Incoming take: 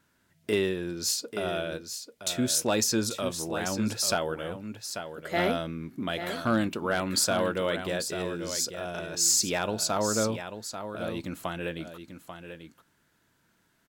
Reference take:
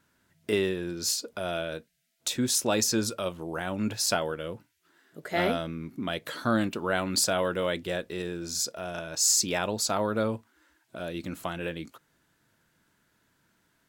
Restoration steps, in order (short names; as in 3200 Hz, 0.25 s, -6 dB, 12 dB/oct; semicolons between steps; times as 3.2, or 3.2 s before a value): clip repair -16 dBFS; inverse comb 0.84 s -9.5 dB